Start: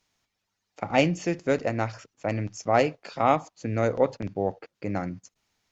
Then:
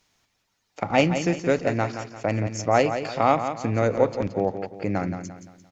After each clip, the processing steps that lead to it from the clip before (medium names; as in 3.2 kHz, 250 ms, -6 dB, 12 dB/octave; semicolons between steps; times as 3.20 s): in parallel at +1 dB: compression, threshold -32 dBFS, peak gain reduction 16.5 dB; on the sum: feedback delay 173 ms, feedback 39%, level -9 dB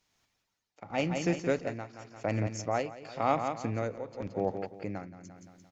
tremolo triangle 0.93 Hz, depth 85%; trim -4.5 dB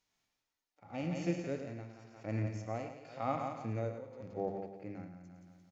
hum notches 50/100/150/200 Hz; harmonic-percussive split percussive -16 dB; delay 107 ms -9 dB; trim -3 dB